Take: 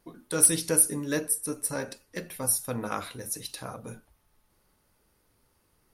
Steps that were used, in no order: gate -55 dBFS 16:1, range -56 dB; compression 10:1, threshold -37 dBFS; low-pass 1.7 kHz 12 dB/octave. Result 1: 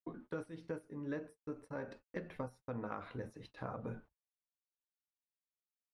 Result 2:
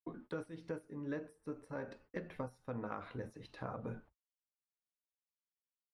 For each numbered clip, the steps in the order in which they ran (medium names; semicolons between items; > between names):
compression > low-pass > gate; gate > compression > low-pass